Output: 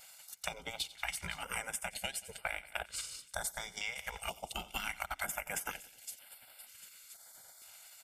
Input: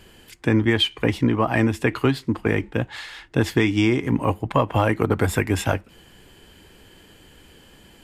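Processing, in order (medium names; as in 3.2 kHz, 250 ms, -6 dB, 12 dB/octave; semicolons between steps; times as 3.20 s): spectral gate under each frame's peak -15 dB weak; 1.06–3.49 s: peaking EQ 8.8 kHz +9.5 dB 0.39 oct; vibrato 2.8 Hz 20 cents; treble shelf 3.5 kHz +12 dB; comb 1.4 ms, depth 56%; feedback echo behind a high-pass 512 ms, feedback 56%, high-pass 4.8 kHz, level -14 dB; transient shaper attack +5 dB, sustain -7 dB; feedback delay 89 ms, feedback 52%, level -20 dB; compression 6:1, threshold -26 dBFS, peak gain reduction 10 dB; step-sequenced notch 2.1 Hz 310–6400 Hz; trim -7 dB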